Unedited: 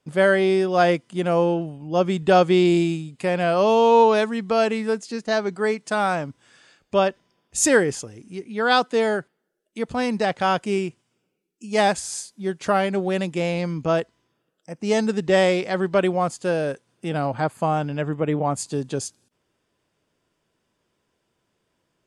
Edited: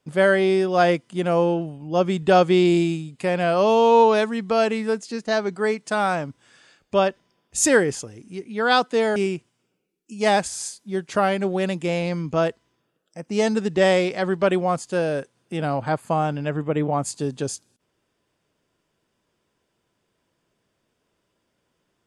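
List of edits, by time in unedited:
0:09.16–0:10.68: remove

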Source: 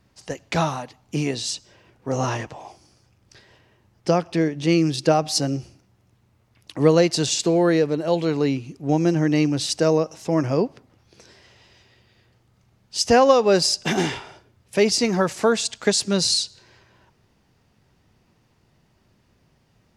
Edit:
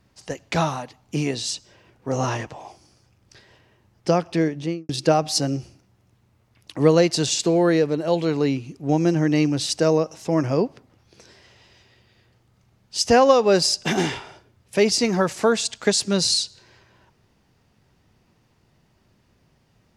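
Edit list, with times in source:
0:04.49–0:04.89: fade out and dull

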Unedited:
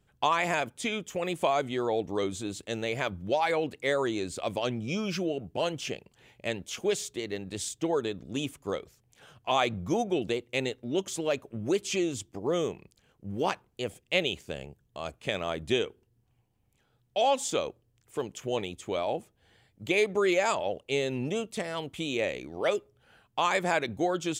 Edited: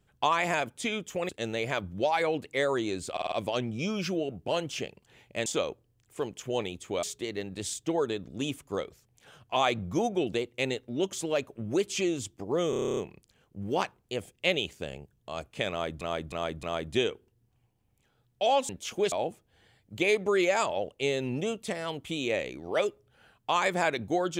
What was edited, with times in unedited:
0:01.29–0:02.58: remove
0:04.41: stutter 0.05 s, 5 plays
0:06.55–0:06.98: swap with 0:17.44–0:19.01
0:12.65: stutter 0.03 s, 10 plays
0:15.38–0:15.69: repeat, 4 plays

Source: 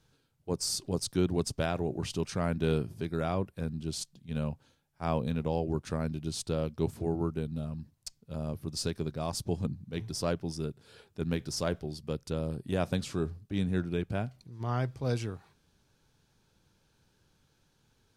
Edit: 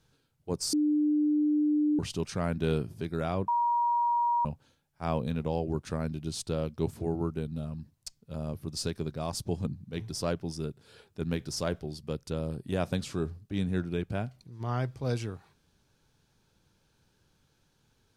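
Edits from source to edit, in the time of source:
0:00.73–0:01.99: beep over 299 Hz −22.5 dBFS
0:03.48–0:04.45: beep over 951 Hz −23.5 dBFS

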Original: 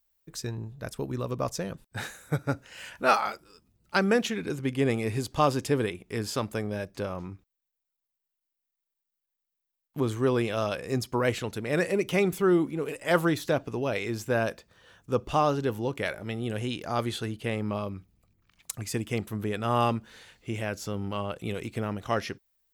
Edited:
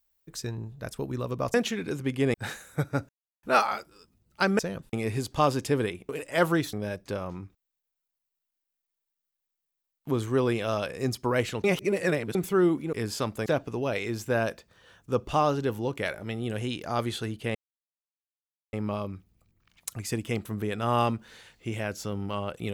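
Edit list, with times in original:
0:01.54–0:01.88: swap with 0:04.13–0:04.93
0:02.63–0:02.97: silence
0:06.09–0:06.62: swap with 0:12.82–0:13.46
0:11.53–0:12.24: reverse
0:17.55: splice in silence 1.18 s

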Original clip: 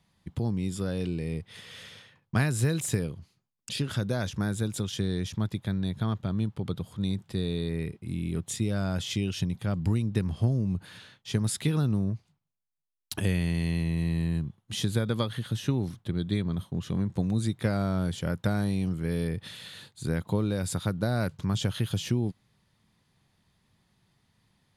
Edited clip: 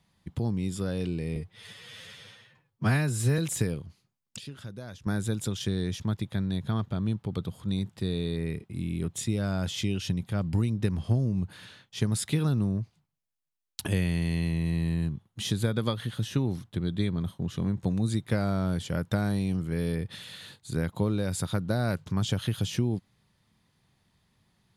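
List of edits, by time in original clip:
0:01.36–0:02.71: time-stretch 1.5×
0:03.71–0:04.39: clip gain −12 dB

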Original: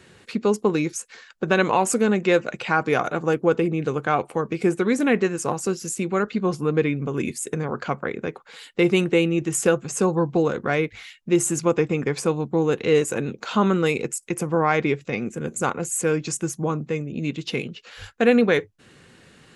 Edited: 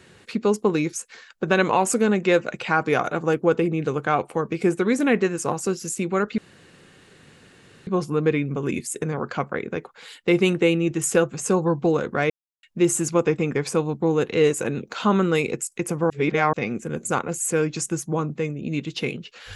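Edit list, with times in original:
0:06.38: splice in room tone 1.49 s
0:10.81–0:11.14: silence
0:14.61–0:15.04: reverse

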